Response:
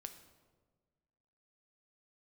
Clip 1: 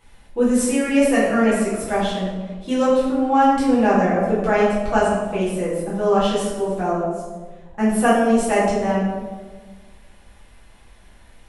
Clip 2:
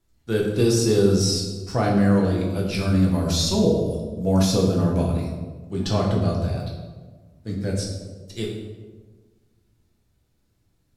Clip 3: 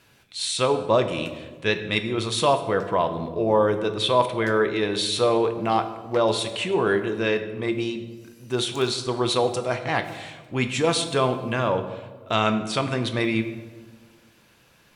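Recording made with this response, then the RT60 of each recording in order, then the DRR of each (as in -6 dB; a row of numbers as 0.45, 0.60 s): 3; 1.4, 1.4, 1.5 s; -9.0, -2.0, 7.0 dB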